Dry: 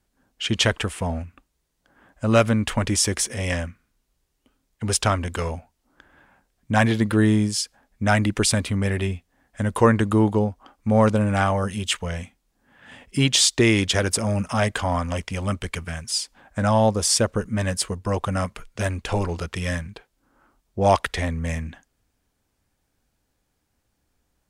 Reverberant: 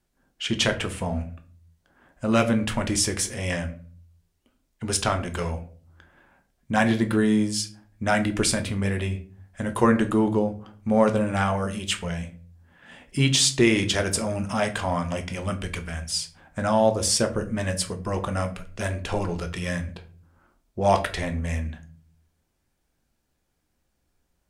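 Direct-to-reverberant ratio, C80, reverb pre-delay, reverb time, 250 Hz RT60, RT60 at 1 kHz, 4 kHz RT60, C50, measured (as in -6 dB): 6.0 dB, 19.0 dB, 3 ms, 0.45 s, 0.65 s, 0.35 s, 0.25 s, 14.5 dB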